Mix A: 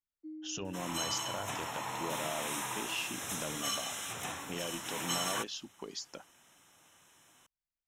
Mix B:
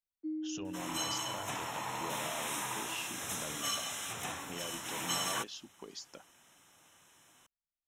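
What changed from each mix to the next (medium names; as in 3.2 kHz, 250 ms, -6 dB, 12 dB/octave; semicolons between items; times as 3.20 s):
speech -4.5 dB; first sound +7.5 dB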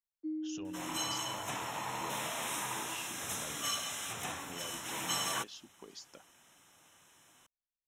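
speech -3.5 dB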